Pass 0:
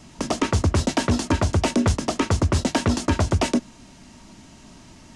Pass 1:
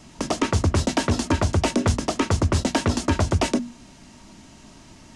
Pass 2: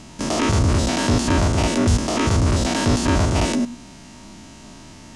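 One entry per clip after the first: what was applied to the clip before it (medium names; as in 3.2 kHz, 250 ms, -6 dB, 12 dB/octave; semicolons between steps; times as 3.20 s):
hum notches 60/120/180/240 Hz
spectrogram pixelated in time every 100 ms; trim +7 dB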